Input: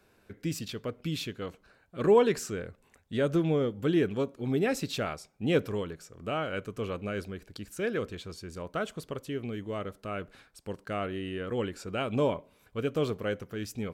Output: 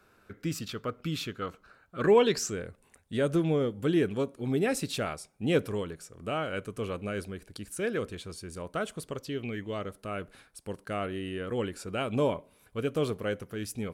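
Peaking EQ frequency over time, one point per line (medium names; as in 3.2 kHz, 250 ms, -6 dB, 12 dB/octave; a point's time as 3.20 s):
peaking EQ +11 dB 0.36 oct
1.99 s 1.3 kHz
2.57 s 9.5 kHz
9.05 s 9.5 kHz
9.59 s 1.7 kHz
9.94 s 10 kHz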